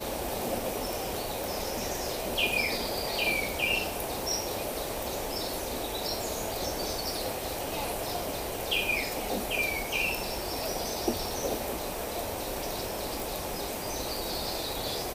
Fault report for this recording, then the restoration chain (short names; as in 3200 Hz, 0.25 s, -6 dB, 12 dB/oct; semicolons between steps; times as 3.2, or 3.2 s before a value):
crackle 23/s -38 dBFS
1.44 pop
13.2 pop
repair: de-click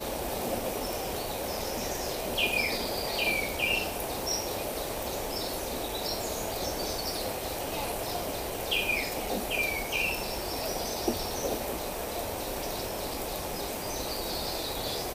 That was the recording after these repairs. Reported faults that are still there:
none